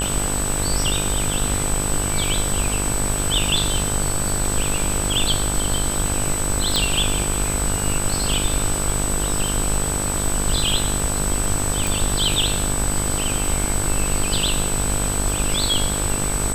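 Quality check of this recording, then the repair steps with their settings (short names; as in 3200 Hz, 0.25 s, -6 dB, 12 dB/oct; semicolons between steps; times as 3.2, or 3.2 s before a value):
buzz 50 Hz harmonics 33 -26 dBFS
crackle 34/s -27 dBFS
tone 8000 Hz -24 dBFS
6.76 pop
11.87 pop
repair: de-click; de-hum 50 Hz, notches 33; notch 8000 Hz, Q 30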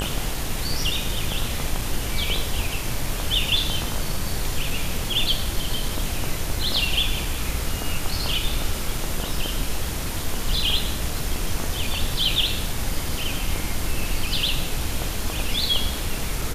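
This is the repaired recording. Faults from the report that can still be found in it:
11.87 pop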